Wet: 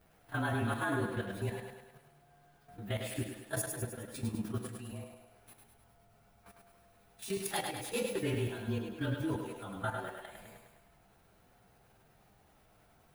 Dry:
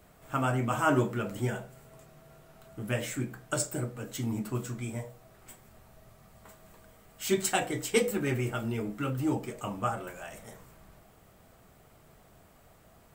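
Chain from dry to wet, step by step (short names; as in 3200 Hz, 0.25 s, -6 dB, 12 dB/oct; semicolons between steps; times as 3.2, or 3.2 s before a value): inharmonic rescaling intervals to 108%; level quantiser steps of 11 dB; thinning echo 0.103 s, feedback 56%, high-pass 240 Hz, level -4.5 dB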